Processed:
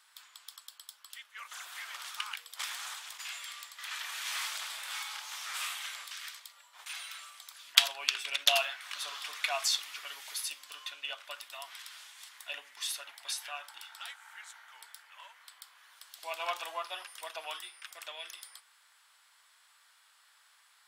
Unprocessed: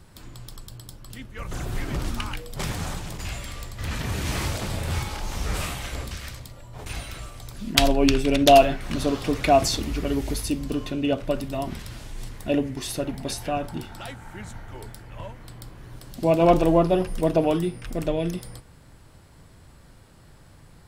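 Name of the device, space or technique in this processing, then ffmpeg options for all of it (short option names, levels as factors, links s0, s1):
headphones lying on a table: -af "highpass=f=1100:w=0.5412,highpass=f=1100:w=1.3066,equalizer=f=3400:t=o:w=0.3:g=4.5,volume=0.631"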